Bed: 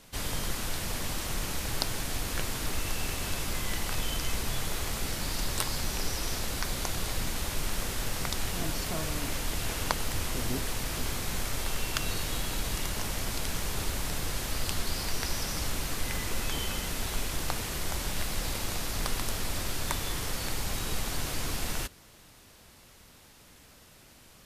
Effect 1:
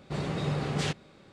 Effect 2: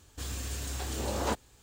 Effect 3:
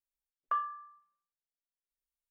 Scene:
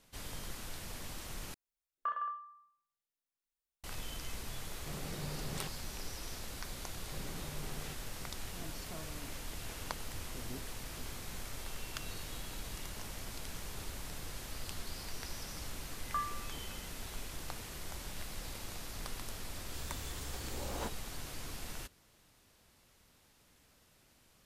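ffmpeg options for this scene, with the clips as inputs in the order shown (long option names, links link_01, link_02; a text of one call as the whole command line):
ffmpeg -i bed.wav -i cue0.wav -i cue1.wav -i cue2.wav -filter_complex "[3:a]asplit=2[link_01][link_02];[1:a]asplit=2[link_03][link_04];[0:a]volume=-11.5dB[link_05];[link_01]aecho=1:1:30|66|109.2|161|223.2:0.794|0.631|0.501|0.398|0.316[link_06];[link_04]acompressor=threshold=-31dB:ratio=6:attack=3.2:release=140:knee=1:detection=peak[link_07];[link_05]asplit=2[link_08][link_09];[link_08]atrim=end=1.544[link_10];[link_06]atrim=end=2.3,asetpts=PTS-STARTPTS,volume=-4.5dB[link_11];[link_09]atrim=start=3.836[link_12];[link_03]atrim=end=1.32,asetpts=PTS-STARTPTS,volume=-13.5dB,afade=type=in:duration=0.004:curve=hsin,afade=type=out:start_time=1.316:duration=0.004:curve=hsin,adelay=4760[link_13];[link_07]atrim=end=1.32,asetpts=PTS-STARTPTS,volume=-12.5dB,afade=type=in:duration=0.004:curve=hsin,afade=type=out:start_time=1.316:duration=0.004:curve=hsin,adelay=7020[link_14];[link_02]atrim=end=2.3,asetpts=PTS-STARTPTS,volume=-4.5dB,afade=type=in:duration=0.004:curve=hsin,afade=type=out:start_time=2.296:duration=0.004:curve=hsin,adelay=15630[link_15];[2:a]atrim=end=1.62,asetpts=PTS-STARTPTS,volume=-10dB,afade=type=in:duration=0.004:curve=hsin,afade=type=out:start_time=1.616:duration=0.004:curve=hsin,adelay=19540[link_16];[link_10][link_11]acrossfade=duration=0.004:curve1=hsin:curve2=hsin[link_17];[link_17][link_12]acrossfade=duration=0.004:curve1=hsin:curve2=hsin[link_18];[link_18][link_13][link_14][link_15][link_16]amix=inputs=5:normalize=0" out.wav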